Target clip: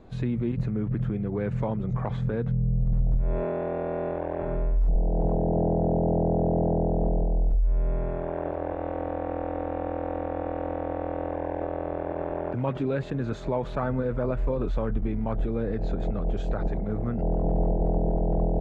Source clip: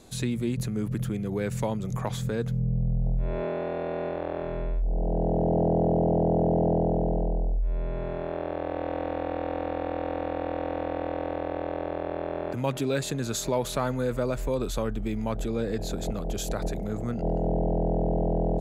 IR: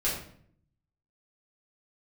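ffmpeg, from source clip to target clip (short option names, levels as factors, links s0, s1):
-filter_complex "[0:a]lowpass=1700,lowshelf=f=83:g=7,asplit=2[s0][s1];[s1]alimiter=limit=0.0891:level=0:latency=1:release=79,volume=1.41[s2];[s0][s2]amix=inputs=2:normalize=0,volume=0.473" -ar 44100 -c:a aac -b:a 32k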